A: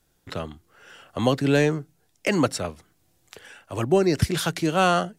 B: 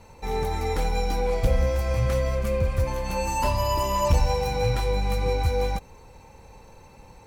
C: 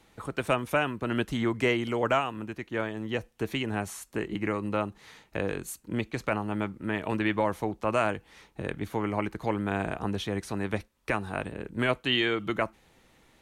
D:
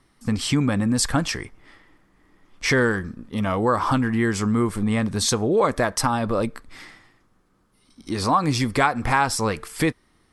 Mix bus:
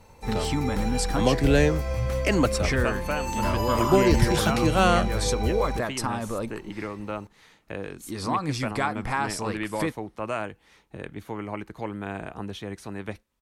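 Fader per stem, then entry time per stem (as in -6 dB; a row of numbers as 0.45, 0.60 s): -1.0, -3.5, -4.0, -7.5 dB; 0.00, 0.00, 2.35, 0.00 s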